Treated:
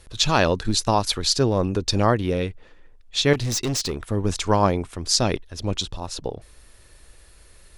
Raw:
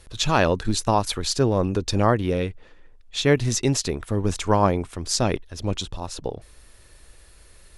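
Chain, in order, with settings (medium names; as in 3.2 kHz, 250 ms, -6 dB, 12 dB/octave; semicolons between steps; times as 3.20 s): dynamic bell 4.6 kHz, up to +6 dB, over -41 dBFS, Q 1.3; 3.33–3.97 s: overload inside the chain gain 21 dB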